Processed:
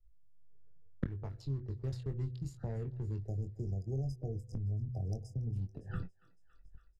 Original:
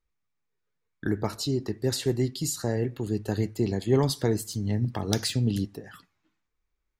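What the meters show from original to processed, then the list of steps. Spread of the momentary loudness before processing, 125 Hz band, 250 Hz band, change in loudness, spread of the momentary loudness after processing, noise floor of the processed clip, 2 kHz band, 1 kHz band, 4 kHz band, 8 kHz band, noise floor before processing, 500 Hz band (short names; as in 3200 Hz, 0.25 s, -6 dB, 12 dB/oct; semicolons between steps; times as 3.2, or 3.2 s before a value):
7 LU, -7.0 dB, -16.0 dB, -11.5 dB, 5 LU, -63 dBFS, under -15 dB, -18.5 dB, under -25 dB, under -25 dB, -80 dBFS, -18.5 dB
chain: Wiener smoothing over 41 samples; RIAA curve playback; de-hum 124.8 Hz, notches 4; spectral delete 3.26–5.53, 800–4900 Hz; gate -51 dBFS, range -32 dB; bell 260 Hz -13.5 dB 1.2 oct; in parallel at -0.5 dB: limiter -19 dBFS, peak gain reduction 8 dB; on the sum: AGC gain up to 13.5 dB; flipped gate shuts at -20 dBFS, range -31 dB; doubler 22 ms -6.5 dB; on a send: thinning echo 0.28 s, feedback 45%, high-pass 830 Hz, level -23 dB; on the sum: three-band squash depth 70%; gain +3 dB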